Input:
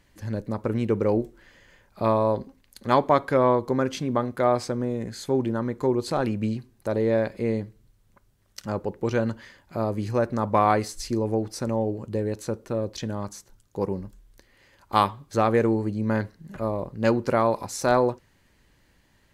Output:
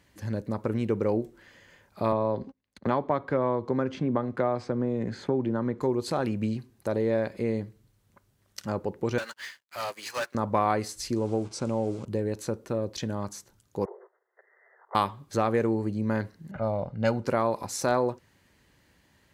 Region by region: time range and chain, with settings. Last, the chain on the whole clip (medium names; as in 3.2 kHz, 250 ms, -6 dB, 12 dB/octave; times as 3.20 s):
2.12–5.81 s: gate -47 dBFS, range -25 dB + tape spacing loss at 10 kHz 21 dB + three bands compressed up and down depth 70%
9.18–10.35 s: high-pass 1.5 kHz + waveshaping leveller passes 5 + upward expansion 2.5:1, over -46 dBFS
11.16–12.06 s: send-on-delta sampling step -43 dBFS + Chebyshev low-pass 8.2 kHz, order 3 + band-stop 1.8 kHz, Q 5.2
13.85–14.95 s: compression, threshold -31 dBFS + LPC vocoder at 8 kHz whisper + brick-wall FIR band-pass 360–2100 Hz
16.51–17.25 s: comb 1.4 ms, depth 59% + level-controlled noise filter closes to 1.8 kHz, open at -16.5 dBFS
whole clip: compression 1.5:1, threshold -28 dBFS; high-pass 67 Hz